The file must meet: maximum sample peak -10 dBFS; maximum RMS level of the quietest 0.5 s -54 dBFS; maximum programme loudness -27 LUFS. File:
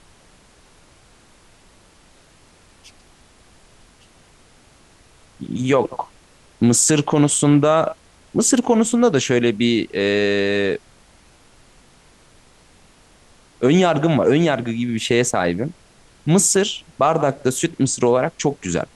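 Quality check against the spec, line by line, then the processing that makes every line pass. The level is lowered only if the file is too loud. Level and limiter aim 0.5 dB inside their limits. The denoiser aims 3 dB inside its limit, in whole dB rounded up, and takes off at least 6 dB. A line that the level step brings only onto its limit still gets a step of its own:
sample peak -5.0 dBFS: fail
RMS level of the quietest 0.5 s -51 dBFS: fail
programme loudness -18.0 LUFS: fail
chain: trim -9.5 dB

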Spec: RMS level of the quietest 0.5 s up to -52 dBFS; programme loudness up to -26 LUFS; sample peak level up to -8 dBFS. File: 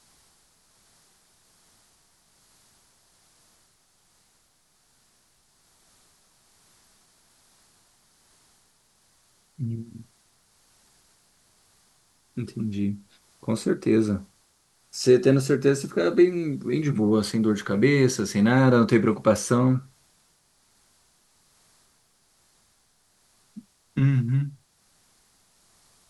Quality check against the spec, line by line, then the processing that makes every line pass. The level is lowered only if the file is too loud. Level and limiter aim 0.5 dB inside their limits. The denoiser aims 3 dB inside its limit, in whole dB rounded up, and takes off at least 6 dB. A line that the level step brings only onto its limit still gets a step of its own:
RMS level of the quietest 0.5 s -65 dBFS: pass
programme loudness -23.0 LUFS: fail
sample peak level -6.0 dBFS: fail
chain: trim -3.5 dB

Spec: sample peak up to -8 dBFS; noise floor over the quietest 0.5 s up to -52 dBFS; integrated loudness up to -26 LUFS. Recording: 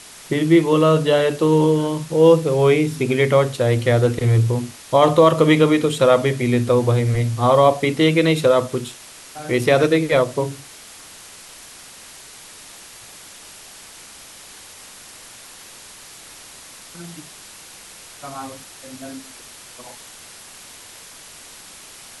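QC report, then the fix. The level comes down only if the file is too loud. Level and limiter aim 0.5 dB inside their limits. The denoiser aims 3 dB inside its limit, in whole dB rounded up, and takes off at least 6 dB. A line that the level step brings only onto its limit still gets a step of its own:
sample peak -2.5 dBFS: fail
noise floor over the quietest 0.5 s -41 dBFS: fail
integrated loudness -17.0 LUFS: fail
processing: noise reduction 6 dB, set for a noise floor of -41 dBFS; trim -9.5 dB

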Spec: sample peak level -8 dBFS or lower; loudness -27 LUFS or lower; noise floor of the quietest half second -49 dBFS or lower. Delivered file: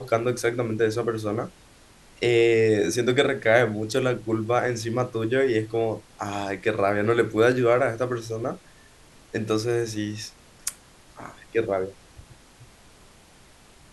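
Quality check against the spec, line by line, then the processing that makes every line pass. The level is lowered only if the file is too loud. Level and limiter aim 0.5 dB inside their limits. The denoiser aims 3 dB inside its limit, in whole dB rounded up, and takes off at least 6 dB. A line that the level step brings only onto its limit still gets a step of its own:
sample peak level -5.5 dBFS: fail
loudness -24.5 LUFS: fail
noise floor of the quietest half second -53 dBFS: pass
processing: trim -3 dB

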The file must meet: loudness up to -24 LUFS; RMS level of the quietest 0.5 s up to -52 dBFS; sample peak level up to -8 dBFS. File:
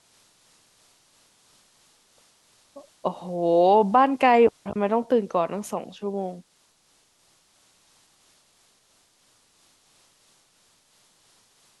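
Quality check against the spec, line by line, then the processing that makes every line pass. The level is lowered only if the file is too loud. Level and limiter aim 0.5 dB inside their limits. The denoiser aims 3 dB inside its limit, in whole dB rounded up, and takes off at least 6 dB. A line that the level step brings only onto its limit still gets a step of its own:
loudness -22.5 LUFS: fail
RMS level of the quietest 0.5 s -64 dBFS: pass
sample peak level -6.5 dBFS: fail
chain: trim -2 dB

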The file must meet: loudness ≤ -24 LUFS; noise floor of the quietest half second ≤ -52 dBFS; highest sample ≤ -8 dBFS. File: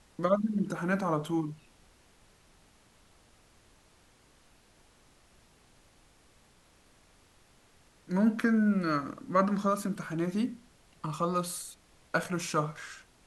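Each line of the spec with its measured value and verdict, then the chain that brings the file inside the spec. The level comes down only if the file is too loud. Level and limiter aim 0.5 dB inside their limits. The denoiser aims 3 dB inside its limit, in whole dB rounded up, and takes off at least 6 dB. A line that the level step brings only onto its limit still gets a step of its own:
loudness -30.5 LUFS: pass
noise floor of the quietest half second -62 dBFS: pass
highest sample -13.0 dBFS: pass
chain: none needed

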